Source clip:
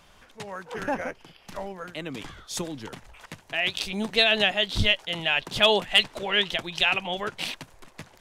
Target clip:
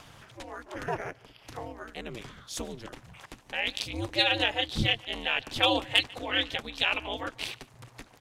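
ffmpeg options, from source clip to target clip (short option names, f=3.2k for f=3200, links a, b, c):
-filter_complex "[0:a]asplit=2[a][b];[b]adelay=145.8,volume=-23dB,highshelf=f=4k:g=-3.28[c];[a][c]amix=inputs=2:normalize=0,acompressor=mode=upward:threshold=-38dB:ratio=2.5,aeval=exprs='val(0)*sin(2*PI*120*n/s)':c=same,volume=-1.5dB"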